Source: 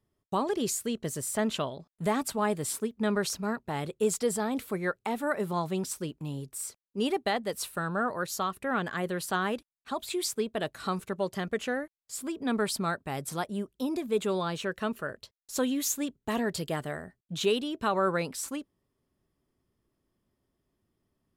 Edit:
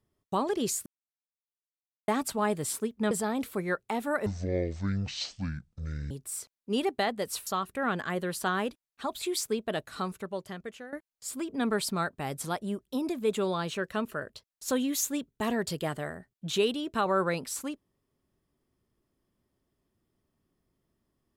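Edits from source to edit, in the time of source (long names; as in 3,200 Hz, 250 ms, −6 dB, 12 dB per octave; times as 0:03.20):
0:00.86–0:02.08: silence
0:03.11–0:04.27: remove
0:05.42–0:06.38: play speed 52%
0:07.74–0:08.34: remove
0:10.59–0:11.80: fade out, to −16 dB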